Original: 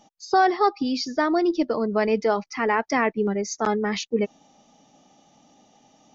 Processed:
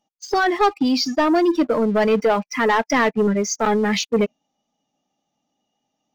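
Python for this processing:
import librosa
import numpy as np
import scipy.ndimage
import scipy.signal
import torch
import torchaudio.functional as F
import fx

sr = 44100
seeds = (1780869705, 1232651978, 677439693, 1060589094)

y = fx.noise_reduce_blind(x, sr, reduce_db=15)
y = fx.leveller(y, sr, passes=2)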